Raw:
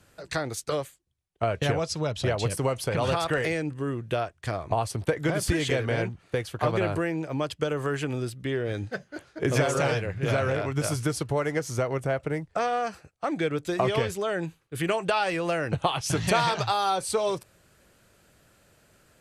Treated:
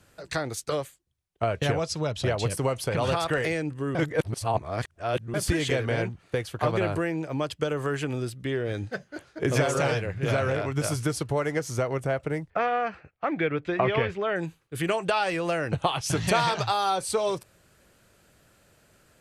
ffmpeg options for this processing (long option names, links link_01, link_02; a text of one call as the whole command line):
ffmpeg -i in.wav -filter_complex "[0:a]asettb=1/sr,asplit=3[link_01][link_02][link_03];[link_01]atrim=end=12.504[link_04];[link_02]atrim=start=12.5:end=14.36,asetpts=PTS-STARTPTS,afade=type=in:duration=0.004:curve=qsin,afade=type=out:start_time=1.856:duration=0.004:curve=qsin,lowpass=frequency=2300:width_type=q:width=1.6[link_05];[link_03]atrim=start=14.356[link_06];[link_04][link_05]acrossfade=duration=0.004:curve1=hsin:curve2=qsin[link_07];[link_07][link_06]acrossfade=duration=0.004:curve1=qsin:curve2=hsin,asplit=3[link_08][link_09][link_10];[link_08]atrim=end=3.952[link_11];[link_09]atrim=start=3.948:end=5.342,asetpts=PTS-STARTPTS,areverse[link_12];[link_10]atrim=start=5.338[link_13];[link_11][link_12]acrossfade=duration=0.004:curve1=hsin:curve2=hsin[link_14];[link_14][link_13]acrossfade=duration=0.004:curve1=hsin:curve2=hsin" out.wav